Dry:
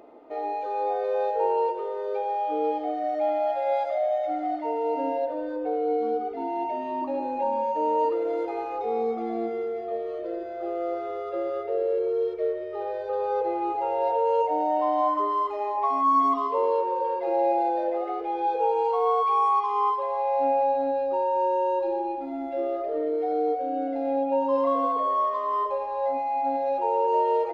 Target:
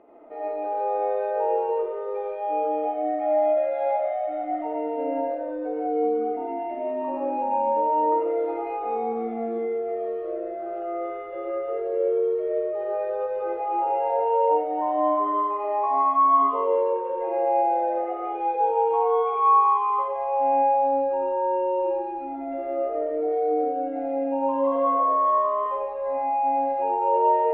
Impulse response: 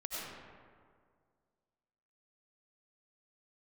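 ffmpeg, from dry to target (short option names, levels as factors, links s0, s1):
-filter_complex "[0:a]lowpass=f=2700:w=0.5412,lowpass=f=2700:w=1.3066[s0];[1:a]atrim=start_sample=2205,afade=t=out:st=0.24:d=0.01,atrim=end_sample=11025[s1];[s0][s1]afir=irnorm=-1:irlink=0"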